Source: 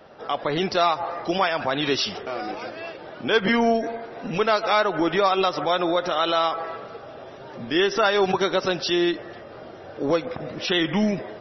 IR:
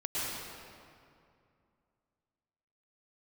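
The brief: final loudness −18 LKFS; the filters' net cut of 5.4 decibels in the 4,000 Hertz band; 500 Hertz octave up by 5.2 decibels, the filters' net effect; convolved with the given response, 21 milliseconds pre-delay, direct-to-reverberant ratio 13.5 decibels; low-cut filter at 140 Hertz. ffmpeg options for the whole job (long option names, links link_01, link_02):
-filter_complex "[0:a]highpass=140,equalizer=frequency=500:width_type=o:gain=7,equalizer=frequency=4000:width_type=o:gain=-7,asplit=2[link_01][link_02];[1:a]atrim=start_sample=2205,adelay=21[link_03];[link_02][link_03]afir=irnorm=-1:irlink=0,volume=-20dB[link_04];[link_01][link_04]amix=inputs=2:normalize=0,volume=2.5dB"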